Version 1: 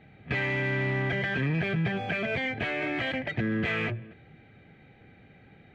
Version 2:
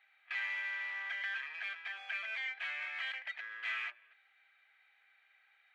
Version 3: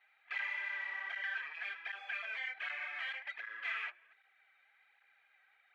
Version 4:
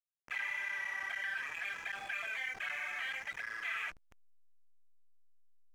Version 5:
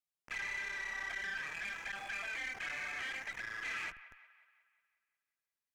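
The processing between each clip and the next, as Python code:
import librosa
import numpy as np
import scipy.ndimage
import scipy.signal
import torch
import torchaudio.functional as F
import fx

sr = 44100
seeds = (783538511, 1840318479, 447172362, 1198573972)

y1 = scipy.signal.sosfilt(scipy.signal.butter(4, 1100.0, 'highpass', fs=sr, output='sos'), x)
y1 = y1 * librosa.db_to_amplitude(-6.5)
y2 = fx.high_shelf(y1, sr, hz=2200.0, db=-9.0)
y2 = fx.flanger_cancel(y2, sr, hz=1.3, depth_ms=6.4)
y2 = y2 * librosa.db_to_amplitude(6.0)
y3 = fx.backlash(y2, sr, play_db=-48.5)
y3 = fx.env_flatten(y3, sr, amount_pct=50)
y4 = fx.tube_stage(y3, sr, drive_db=35.0, bias=0.35)
y4 = fx.echo_wet_bandpass(y4, sr, ms=181, feedback_pct=53, hz=1400.0, wet_db=-15)
y4 = y4 * librosa.db_to_amplitude(1.0)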